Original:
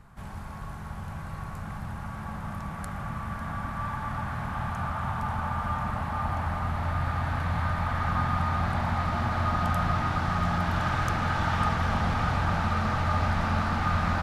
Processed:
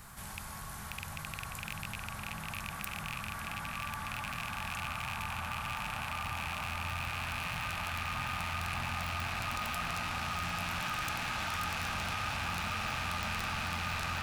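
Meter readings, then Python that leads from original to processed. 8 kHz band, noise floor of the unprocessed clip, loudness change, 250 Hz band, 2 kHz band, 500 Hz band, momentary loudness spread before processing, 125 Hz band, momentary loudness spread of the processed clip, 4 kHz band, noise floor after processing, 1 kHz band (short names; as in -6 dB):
+6.0 dB, -38 dBFS, -7.5 dB, -13.0 dB, -2.5 dB, -11.0 dB, 11 LU, -13.5 dB, 6 LU, +3.0 dB, -44 dBFS, -8.5 dB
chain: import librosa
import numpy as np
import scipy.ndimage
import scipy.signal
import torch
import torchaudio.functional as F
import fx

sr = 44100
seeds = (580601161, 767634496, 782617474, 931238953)

p1 = fx.rattle_buzz(x, sr, strikes_db=-31.0, level_db=-23.0)
p2 = librosa.effects.preemphasis(p1, coef=0.9, zi=[0.0])
p3 = (np.mod(10.0 ** (29.0 / 20.0) * p2 + 1.0, 2.0) - 1.0) / 10.0 ** (29.0 / 20.0)
p4 = p3 + fx.echo_wet_lowpass(p3, sr, ms=604, feedback_pct=75, hz=4000.0, wet_db=-4.5, dry=0)
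p5 = fx.env_flatten(p4, sr, amount_pct=50)
y = p5 * 10.0 ** (2.0 / 20.0)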